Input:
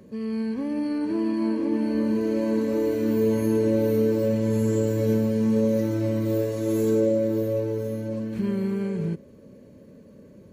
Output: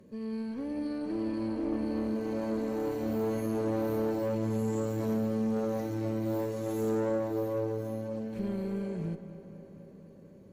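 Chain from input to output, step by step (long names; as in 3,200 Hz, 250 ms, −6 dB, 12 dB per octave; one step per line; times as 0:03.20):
tube saturation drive 20 dB, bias 0.55
feedback echo with a low-pass in the loop 242 ms, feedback 75%, low-pass 3,700 Hz, level −13 dB
level −4.5 dB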